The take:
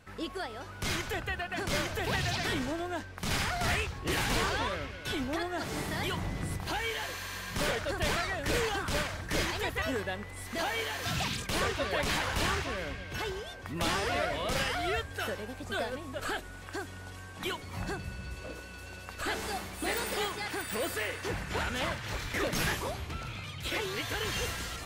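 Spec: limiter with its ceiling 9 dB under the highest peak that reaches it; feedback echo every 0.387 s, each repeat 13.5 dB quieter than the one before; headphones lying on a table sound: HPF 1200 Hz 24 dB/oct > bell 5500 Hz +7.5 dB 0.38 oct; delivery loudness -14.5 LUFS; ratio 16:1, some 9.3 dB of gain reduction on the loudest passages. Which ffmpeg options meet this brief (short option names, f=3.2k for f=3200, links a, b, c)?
-af "acompressor=threshold=-35dB:ratio=16,alimiter=level_in=9.5dB:limit=-24dB:level=0:latency=1,volume=-9.5dB,highpass=f=1.2k:w=0.5412,highpass=f=1.2k:w=1.3066,equalizer=f=5.5k:t=o:w=0.38:g=7.5,aecho=1:1:387|774:0.211|0.0444,volume=29dB"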